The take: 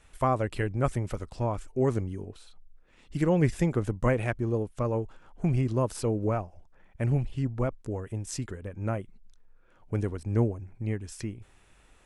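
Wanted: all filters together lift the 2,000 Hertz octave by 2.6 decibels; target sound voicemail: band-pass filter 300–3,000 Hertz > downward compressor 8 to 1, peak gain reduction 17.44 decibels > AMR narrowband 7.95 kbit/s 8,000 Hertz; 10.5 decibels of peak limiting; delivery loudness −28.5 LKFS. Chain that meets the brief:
parametric band 2,000 Hz +4 dB
brickwall limiter −22 dBFS
band-pass filter 300–3,000 Hz
downward compressor 8 to 1, threshold −45 dBFS
level +23 dB
AMR narrowband 7.95 kbit/s 8,000 Hz

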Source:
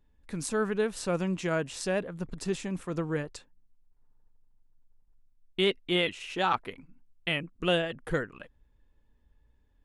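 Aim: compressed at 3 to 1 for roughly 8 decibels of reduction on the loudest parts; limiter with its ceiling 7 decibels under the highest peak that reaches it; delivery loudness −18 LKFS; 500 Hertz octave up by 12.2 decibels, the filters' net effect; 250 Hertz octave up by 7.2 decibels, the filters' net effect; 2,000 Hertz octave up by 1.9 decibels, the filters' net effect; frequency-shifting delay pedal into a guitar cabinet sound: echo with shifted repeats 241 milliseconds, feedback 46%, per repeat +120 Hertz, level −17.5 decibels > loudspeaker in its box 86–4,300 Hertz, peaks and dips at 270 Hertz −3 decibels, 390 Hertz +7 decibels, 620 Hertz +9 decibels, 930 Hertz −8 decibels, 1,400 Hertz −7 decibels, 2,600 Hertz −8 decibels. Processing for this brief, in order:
parametric band 250 Hz +5.5 dB
parametric band 500 Hz +6.5 dB
parametric band 2,000 Hz +7 dB
downward compressor 3 to 1, threshold −27 dBFS
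brickwall limiter −22 dBFS
echo with shifted repeats 241 ms, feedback 46%, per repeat +120 Hz, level −17.5 dB
loudspeaker in its box 86–4,300 Hz, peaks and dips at 270 Hz −3 dB, 390 Hz +7 dB, 620 Hz +9 dB, 930 Hz −8 dB, 1,400 Hz −7 dB, 2,600 Hz −8 dB
level +12.5 dB

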